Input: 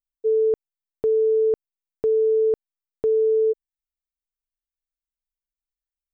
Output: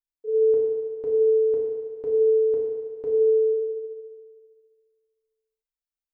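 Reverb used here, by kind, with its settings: FDN reverb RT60 1.8 s, low-frequency decay 0.7×, high-frequency decay 0.95×, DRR -5 dB; trim -10.5 dB

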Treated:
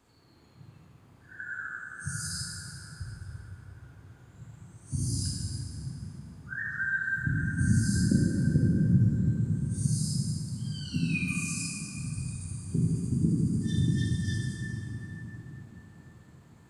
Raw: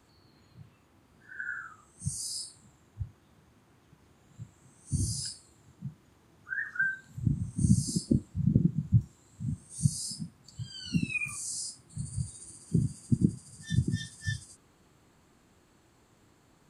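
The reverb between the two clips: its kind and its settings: plate-style reverb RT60 5 s, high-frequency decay 0.4×, DRR -4.5 dB; trim -3.5 dB

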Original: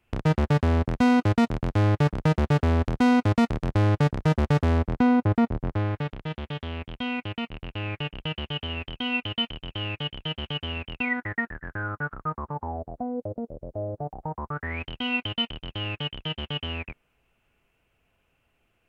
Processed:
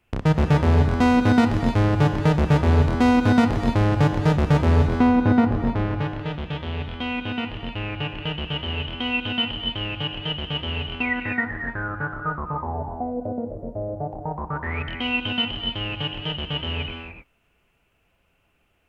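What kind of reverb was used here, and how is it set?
gated-style reverb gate 320 ms rising, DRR 4 dB; trim +2.5 dB

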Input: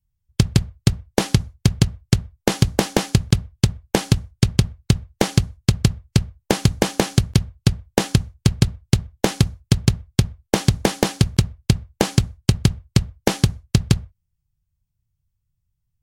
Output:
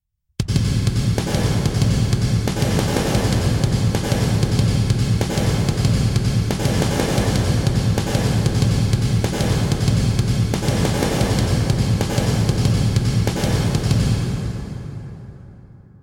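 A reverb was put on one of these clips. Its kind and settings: plate-style reverb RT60 3.9 s, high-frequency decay 0.55×, pre-delay 80 ms, DRR -6.5 dB; trim -6 dB

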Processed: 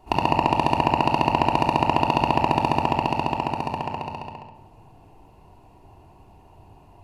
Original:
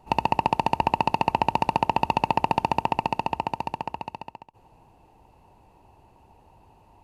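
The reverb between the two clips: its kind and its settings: simulated room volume 2400 m³, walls furnished, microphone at 3.2 m; trim +1 dB

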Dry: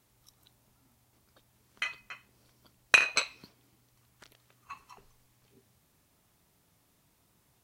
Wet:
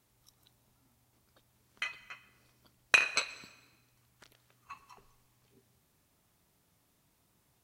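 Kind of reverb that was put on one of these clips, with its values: plate-style reverb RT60 1.2 s, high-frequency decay 0.9×, pre-delay 105 ms, DRR 18 dB; trim -3 dB

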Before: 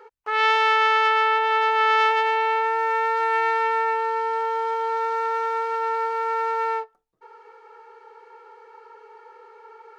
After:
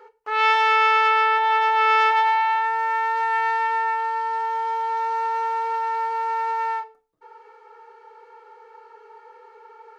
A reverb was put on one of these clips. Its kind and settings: FDN reverb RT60 0.34 s, low-frequency decay 1×, high-frequency decay 0.9×, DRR 7.5 dB; trim -1.5 dB

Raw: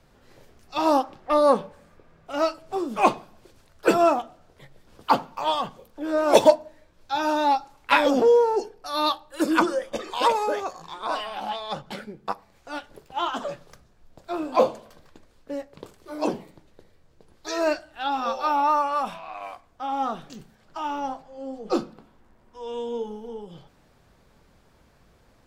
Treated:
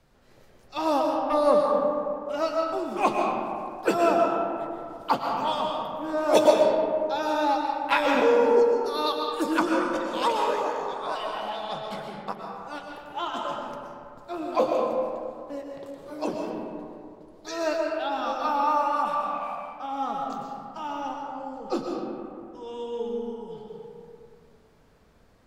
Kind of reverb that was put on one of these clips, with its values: algorithmic reverb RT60 2.5 s, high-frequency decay 0.4×, pre-delay 85 ms, DRR 0 dB; trim -4.5 dB

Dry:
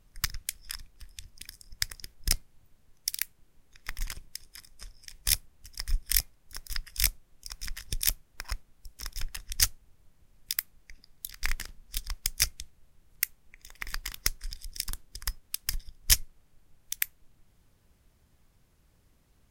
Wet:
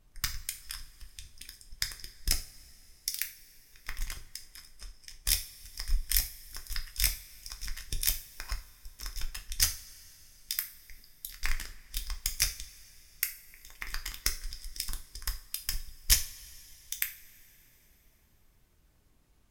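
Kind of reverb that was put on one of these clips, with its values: two-slope reverb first 0.35 s, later 3.6 s, from -22 dB, DRR 4 dB; trim -3 dB

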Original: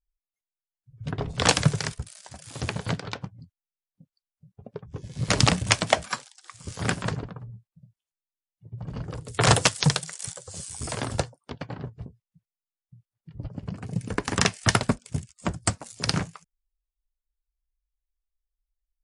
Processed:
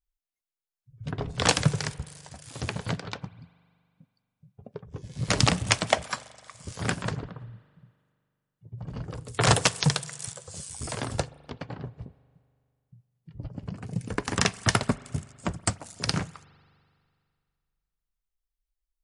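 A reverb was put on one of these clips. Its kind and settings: spring tank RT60 2.2 s, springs 41 ms, chirp 25 ms, DRR 19.5 dB; trim -2 dB

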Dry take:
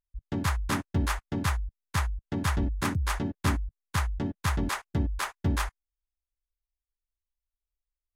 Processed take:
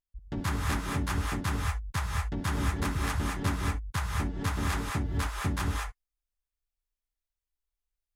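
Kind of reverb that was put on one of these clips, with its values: gated-style reverb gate 240 ms rising, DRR -0.5 dB; trim -4 dB

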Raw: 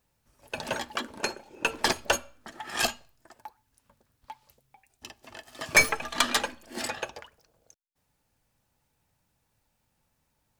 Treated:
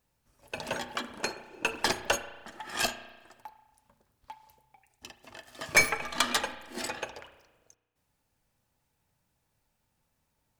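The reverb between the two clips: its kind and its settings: spring tank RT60 1.2 s, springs 33 ms, chirp 65 ms, DRR 11 dB; trim -2.5 dB

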